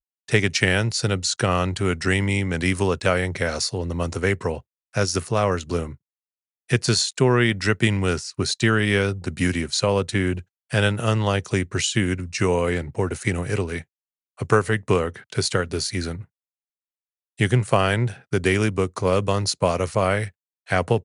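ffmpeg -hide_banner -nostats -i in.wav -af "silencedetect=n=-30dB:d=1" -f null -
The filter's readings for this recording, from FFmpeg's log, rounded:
silence_start: 16.21
silence_end: 17.40 | silence_duration: 1.18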